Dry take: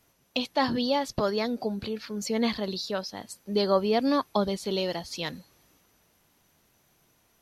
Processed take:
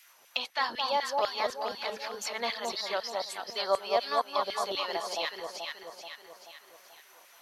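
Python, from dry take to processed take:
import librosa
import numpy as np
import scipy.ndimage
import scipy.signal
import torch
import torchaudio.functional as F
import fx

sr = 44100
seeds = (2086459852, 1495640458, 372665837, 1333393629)

y = fx.filter_lfo_highpass(x, sr, shape='saw_down', hz=4.0, low_hz=580.0, high_hz=2300.0, q=1.5)
y = fx.echo_alternate(y, sr, ms=216, hz=1100.0, feedback_pct=61, wet_db=-2.0)
y = fx.band_squash(y, sr, depth_pct=40)
y = y * 10.0 ** (-2.0 / 20.0)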